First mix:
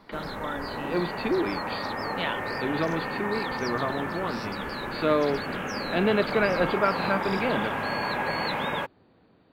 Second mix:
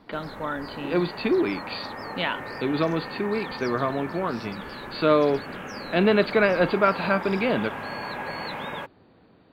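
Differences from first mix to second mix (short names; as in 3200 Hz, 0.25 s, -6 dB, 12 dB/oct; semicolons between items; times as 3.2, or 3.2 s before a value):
speech +4.0 dB; background -4.5 dB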